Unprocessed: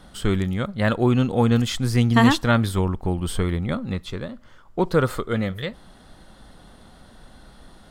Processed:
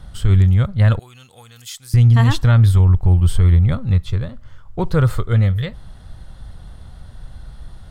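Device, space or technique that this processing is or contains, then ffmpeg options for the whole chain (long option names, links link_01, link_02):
car stereo with a boomy subwoofer: -filter_complex "[0:a]lowshelf=frequency=160:width_type=q:width=1.5:gain=13.5,alimiter=limit=-6dB:level=0:latency=1:release=46,asettb=1/sr,asplit=3[link_01][link_02][link_03];[link_01]atrim=end=0.994[link_04];[link_02]atrim=start=0.99:end=1.94,asetpts=PTS-STARTPTS,afade=type=in:duration=0.004:curve=qsin,afade=type=out:start_time=0.946:duration=0.004:curve=qsin,aderivative[link_05];[link_03]atrim=start=1.936[link_06];[link_04][link_05]acrossfade=duration=0.004:curve1=hsin:curve2=qsin[link_07];[link_07][link_06]acrossfade=duration=0.004:curve1=qsin:curve2=hsin"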